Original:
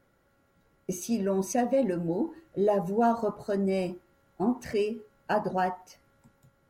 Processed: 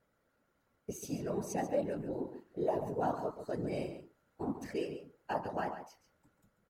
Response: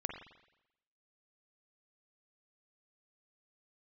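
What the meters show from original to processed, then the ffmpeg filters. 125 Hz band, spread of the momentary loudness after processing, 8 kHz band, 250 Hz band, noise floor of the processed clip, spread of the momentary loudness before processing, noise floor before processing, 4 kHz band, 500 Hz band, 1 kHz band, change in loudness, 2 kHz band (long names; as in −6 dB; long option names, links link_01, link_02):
−7.0 dB, 12 LU, −9.0 dB, −10.0 dB, −77 dBFS, 10 LU, −68 dBFS, −8.0 dB, −8.5 dB, −8.5 dB, −9.0 dB, −8.5 dB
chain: -filter_complex "[0:a]afftfilt=real='hypot(re,im)*cos(2*PI*random(0))':imag='hypot(re,im)*sin(2*PI*random(1))':win_size=512:overlap=0.75,lowshelf=frequency=180:gain=-4,asplit=2[link_01][link_02];[link_02]adelay=139.9,volume=-10dB,highshelf=frequency=4000:gain=-3.15[link_03];[link_01][link_03]amix=inputs=2:normalize=0,volume=-2.5dB"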